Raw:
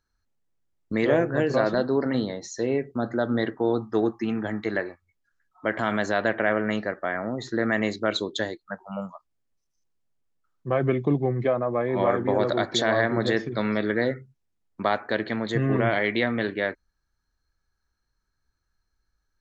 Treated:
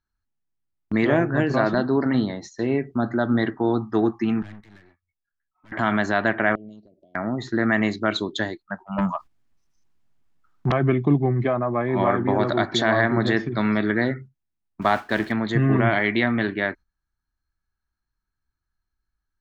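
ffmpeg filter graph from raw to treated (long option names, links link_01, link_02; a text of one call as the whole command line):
ffmpeg -i in.wav -filter_complex "[0:a]asettb=1/sr,asplit=3[link_01][link_02][link_03];[link_01]atrim=end=4.424[link_04];[link_02]atrim=start=4.42:end=5.72,asetpts=PTS-STARTPTS,afade=type=in:duration=0.004:curve=qsin,afade=type=out:start_time=1.296:duration=0.004:curve=qsin,equalizer=frequency=460:width=0.47:gain=-7,acrossover=split=230|3000[link_05][link_06][link_07];[link_06]acompressor=threshold=-39dB:ratio=3:attack=3.2:release=140:knee=2.83:detection=peak[link_08];[link_05][link_08][link_07]amix=inputs=3:normalize=0,aeval=exprs='(tanh(126*val(0)+0.75)-tanh(0.75))/126':channel_layout=same[link_09];[link_03]atrim=start=5.716[link_10];[link_04][link_09]acrossfade=duration=0.004:curve1=hsin:curve2=qsin[link_11];[link_11][link_10]acrossfade=duration=0.004:curve1=qsin:curve2=hsin,asettb=1/sr,asplit=3[link_12][link_13][link_14];[link_12]atrim=end=6.554[link_15];[link_13]atrim=start=6.55:end=7.15,asetpts=PTS-STARTPTS,afade=type=in:duration=0.004:curve=qsin,afade=type=out:start_time=0.596:duration=0.004:curve=qsin,equalizer=frequency=830:width=7.2:gain=-13.5,acompressor=threshold=-39dB:ratio=10:attack=3.2:release=140:knee=1:detection=peak,asuperstop=centerf=1500:order=8:qfactor=0.53[link_16];[link_14]atrim=start=7.146[link_17];[link_15][link_16]acrossfade=duration=0.004:curve1=hsin:curve2=qsin[link_18];[link_18][link_17]acrossfade=duration=0.004:curve1=qsin:curve2=hsin,asettb=1/sr,asplit=3[link_19][link_20][link_21];[link_19]atrim=end=8.984[link_22];[link_20]atrim=start=8.98:end=10.72,asetpts=PTS-STARTPTS,afade=type=in:duration=0.004:curve=qsin,afade=type=out:start_time=1.736:duration=0.004:curve=qsin,aeval=exprs='0.178*sin(PI/2*3.98*val(0)/0.178)':channel_layout=same,acompressor=threshold=-28dB:ratio=2:attack=3.2:release=140:knee=1:detection=peak[link_23];[link_21]atrim=start=10.716[link_24];[link_22][link_23]acrossfade=duration=0.004:curve1=hsin:curve2=qsin[link_25];[link_25][link_24]acrossfade=duration=0.004:curve1=qsin:curve2=hsin,asettb=1/sr,asplit=3[link_26][link_27][link_28];[link_26]atrim=end=14.814[link_29];[link_27]atrim=start=14.81:end=15.32,asetpts=PTS-STARTPTS,afade=type=in:duration=0.004:curve=qsin,afade=type=out:start_time=0.506:duration=0.004:curve=qsin,aeval=exprs='val(0)+0.5*0.0178*sgn(val(0))':channel_layout=same,agate=range=-33dB:threshold=-28dB:ratio=3:release=100:detection=peak[link_30];[link_28]atrim=start=15.316[link_31];[link_29][link_30]acrossfade=duration=0.004:curve1=hsin:curve2=qsin[link_32];[link_32][link_31]acrossfade=duration=0.004:curve1=qsin:curve2=hsin,highshelf=frequency=4200:gain=-10.5,agate=range=-10dB:threshold=-42dB:ratio=16:detection=peak,equalizer=frequency=500:width=3.4:gain=-12,volume=5.5dB" out.wav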